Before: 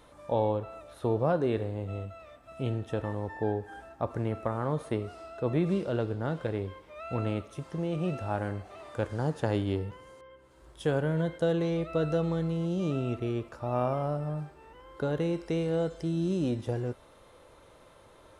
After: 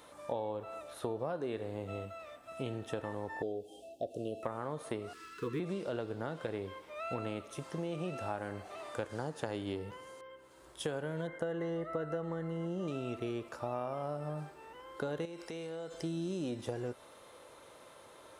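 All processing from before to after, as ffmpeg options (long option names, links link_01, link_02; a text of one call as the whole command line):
ffmpeg -i in.wav -filter_complex "[0:a]asettb=1/sr,asplit=3[link_01][link_02][link_03];[link_01]atrim=end=3.424[link_04];[link_02]atrim=start=3.42:end=4.43,asetpts=PTS-STARTPTS,afade=type=in:duration=0.004:curve=qsin,afade=type=out:start_time=1.006:duration=0.004:curve=qsin,asuperstop=centerf=1400:order=20:qfactor=0.7,bass=frequency=250:gain=-7,treble=frequency=4000:gain=-1[link_05];[link_03]atrim=start=4.426[link_06];[link_04][link_05]acrossfade=duration=0.004:curve1=hsin:curve2=qsin[link_07];[link_07][link_06]acrossfade=duration=0.004:curve1=qsin:curve2=hsin,asettb=1/sr,asplit=3[link_08][link_09][link_10];[link_08]atrim=end=5.134[link_11];[link_09]atrim=start=5.13:end=5.6,asetpts=PTS-STARTPTS,afade=type=in:duration=0.004:curve=qsin,afade=type=out:start_time=0.466:duration=0.004:curve=qsin,aeval=exprs='sgn(val(0))*max(abs(val(0))-0.00266,0)':channel_layout=same,aeval=exprs='val(0)+0.000891*sin(2*PI*1700*n/s)':channel_layout=same,asuperstop=centerf=680:order=20:qfactor=1.5[link_12];[link_10]atrim=start=5.596[link_13];[link_11][link_12]acrossfade=duration=0.004:curve1=hsin:curve2=qsin[link_14];[link_14][link_13]acrossfade=duration=0.004:curve1=qsin:curve2=hsin,asettb=1/sr,asplit=3[link_15][link_16][link_17];[link_15]atrim=end=11.274[link_18];[link_16]atrim=start=11.27:end=12.88,asetpts=PTS-STARTPTS,afade=type=in:duration=0.004:curve=qsin,afade=type=out:start_time=1.606:duration=0.004:curve=qsin,asuperstop=centerf=2400:order=20:qfactor=4,highshelf=frequency=2900:width_type=q:width=3:gain=-7.5[link_19];[link_17]atrim=start=12.876[link_20];[link_18][link_19]acrossfade=duration=0.004:curve1=hsin:curve2=qsin[link_21];[link_21][link_20]acrossfade=duration=0.004:curve1=qsin:curve2=hsin,asettb=1/sr,asplit=3[link_22][link_23][link_24];[link_22]atrim=end=15.254[link_25];[link_23]atrim=start=15.25:end=15.94,asetpts=PTS-STARTPTS,afade=type=in:duration=0.004:curve=qsin,afade=type=out:start_time=0.686:duration=0.004:curve=qsin,lowshelf=frequency=440:gain=-6,acompressor=threshold=-38dB:ratio=10:attack=3.2:release=140:knee=1:detection=peak[link_26];[link_24]atrim=start=15.936[link_27];[link_25][link_26]acrossfade=duration=0.004:curve1=hsin:curve2=qsin[link_28];[link_28][link_27]acrossfade=duration=0.004:curve1=qsin:curve2=hsin,highpass=frequency=290:poles=1,highshelf=frequency=5700:gain=5,acompressor=threshold=-35dB:ratio=6,volume=1.5dB" out.wav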